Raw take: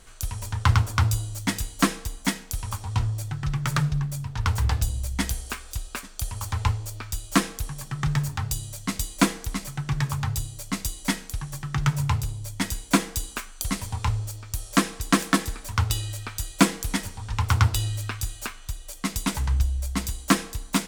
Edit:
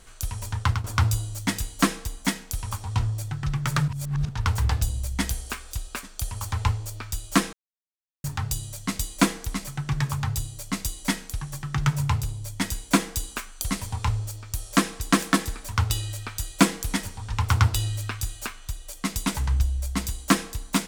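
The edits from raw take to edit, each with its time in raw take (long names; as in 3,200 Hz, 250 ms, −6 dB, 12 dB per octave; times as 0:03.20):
0:00.56–0:00.84: fade out, to −13 dB
0:03.88–0:04.29: reverse
0:07.53–0:08.24: silence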